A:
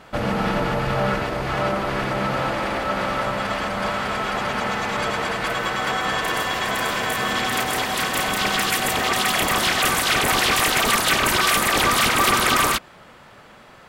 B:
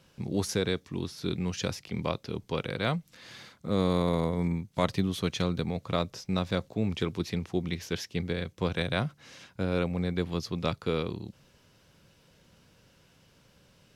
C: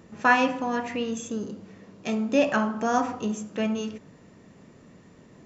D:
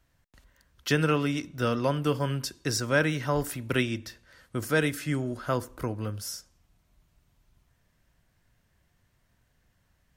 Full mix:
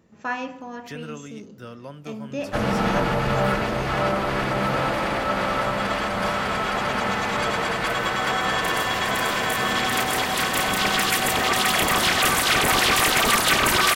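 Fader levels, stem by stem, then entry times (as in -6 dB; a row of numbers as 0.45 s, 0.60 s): 0.0 dB, -14.0 dB, -8.5 dB, -12.5 dB; 2.40 s, 2.10 s, 0.00 s, 0.00 s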